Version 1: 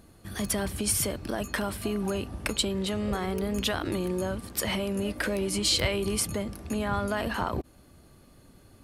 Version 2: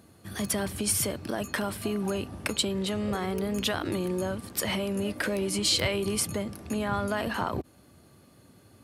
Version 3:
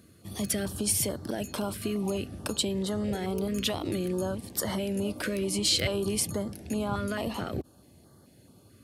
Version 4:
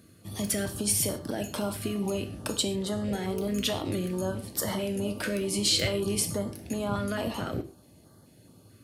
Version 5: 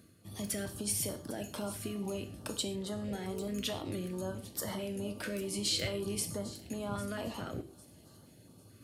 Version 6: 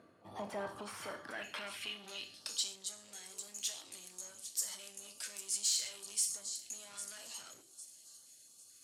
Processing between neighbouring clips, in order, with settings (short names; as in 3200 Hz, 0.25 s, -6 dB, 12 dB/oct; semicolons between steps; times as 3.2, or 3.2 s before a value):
HPF 79 Hz 24 dB/oct
stepped notch 4.6 Hz 840–2500 Hz
non-linear reverb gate 0.16 s falling, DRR 6.5 dB
reverse; upward compressor, threshold -42 dBFS; reverse; thin delay 0.801 s, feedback 32%, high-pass 5000 Hz, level -14 dB; gain -7.5 dB
soft clip -36.5 dBFS, distortion -10 dB; band-pass sweep 840 Hz -> 7100 Hz, 0.53–2.88; gain +13.5 dB